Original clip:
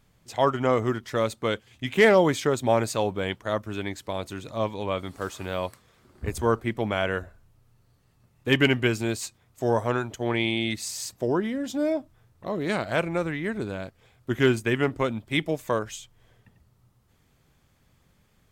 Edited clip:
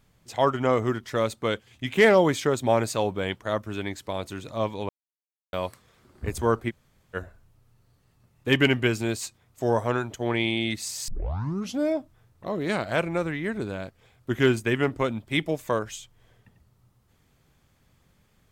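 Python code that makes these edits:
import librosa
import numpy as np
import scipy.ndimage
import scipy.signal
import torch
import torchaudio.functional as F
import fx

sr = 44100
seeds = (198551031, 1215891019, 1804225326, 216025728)

y = fx.edit(x, sr, fx.silence(start_s=4.89, length_s=0.64),
    fx.room_tone_fill(start_s=6.7, length_s=0.45, crossfade_s=0.04),
    fx.tape_start(start_s=11.08, length_s=0.71), tone=tone)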